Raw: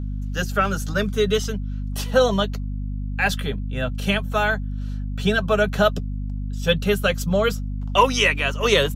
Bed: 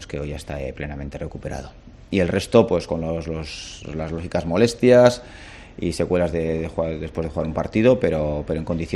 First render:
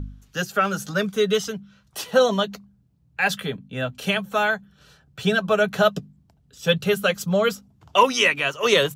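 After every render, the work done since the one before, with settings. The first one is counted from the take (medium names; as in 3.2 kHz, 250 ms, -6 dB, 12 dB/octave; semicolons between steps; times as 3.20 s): de-hum 50 Hz, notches 5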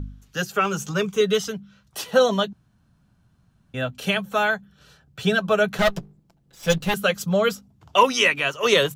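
0.54–1.21 s: rippled EQ curve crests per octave 0.72, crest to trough 8 dB; 2.53–3.74 s: room tone; 5.78–6.94 s: comb filter that takes the minimum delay 5.9 ms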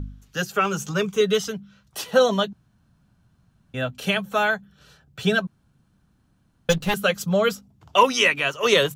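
5.47–6.69 s: room tone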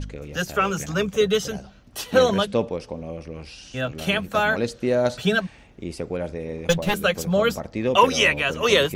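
add bed -8.5 dB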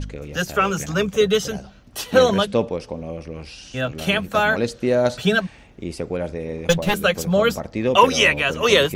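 trim +2.5 dB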